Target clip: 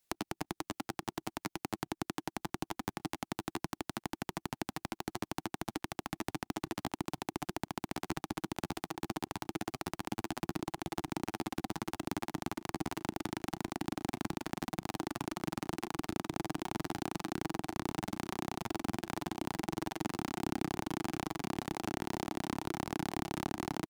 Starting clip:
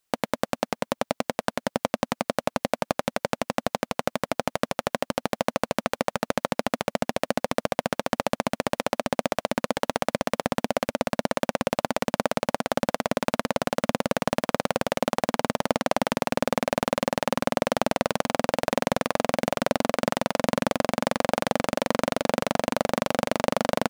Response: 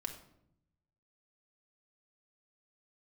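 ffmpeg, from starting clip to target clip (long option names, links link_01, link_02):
-filter_complex "[0:a]equalizer=frequency=870:width_type=o:width=2.6:gain=-4,acrossover=split=160[link_01][link_02];[link_02]acompressor=threshold=-36dB:ratio=10[link_03];[link_01][link_03]amix=inputs=2:normalize=0,asetrate=62367,aresample=44100,atempo=0.707107,volume=1.5dB"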